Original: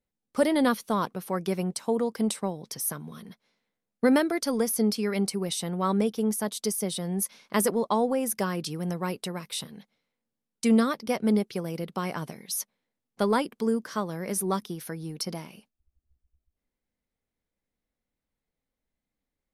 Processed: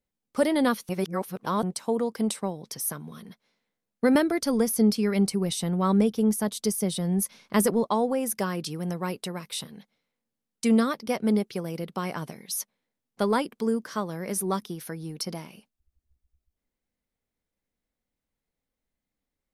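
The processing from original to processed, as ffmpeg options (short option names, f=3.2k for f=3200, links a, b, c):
-filter_complex "[0:a]asettb=1/sr,asplit=3[a][b][c];[a]atrim=end=4.154[d];[b]atrim=start=4.15:end=7.86,asetpts=PTS-STARTPTS,afade=t=in:d=0.004:c=qsin,afade=t=out:st=3.706:d=0.004:c=qsin,lowshelf=f=170:g=11[e];[c]atrim=start=7.856[f];[d][e]acrossfade=d=0.004:c1=hsin:c2=qsin[g];[g][f]acrossfade=d=0.004:c1=qsin:c2=hsin,asplit=3[h][i][j];[h]atrim=end=0.892[k];[i]atrim=start=0.888:end=1.632,asetpts=PTS-STARTPTS,areverse[l];[j]atrim=start=1.628[m];[k][l]acrossfade=d=0.004:c1=hsin:c2=hsin[n];[n][m]acrossfade=d=0.004:c1=hsin:c2=hsin"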